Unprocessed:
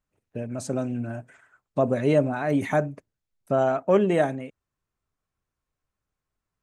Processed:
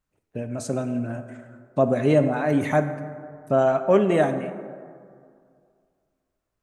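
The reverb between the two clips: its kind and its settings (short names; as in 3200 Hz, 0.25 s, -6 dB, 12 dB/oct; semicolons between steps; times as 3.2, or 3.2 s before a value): plate-style reverb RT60 2.2 s, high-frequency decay 0.4×, DRR 8.5 dB; gain +1.5 dB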